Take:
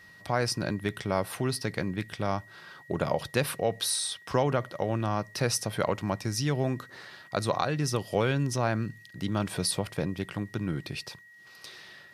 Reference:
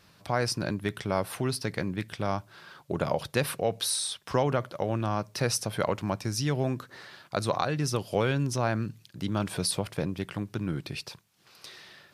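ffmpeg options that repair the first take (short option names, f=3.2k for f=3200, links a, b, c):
-af "bandreject=f=1.9k:w=30"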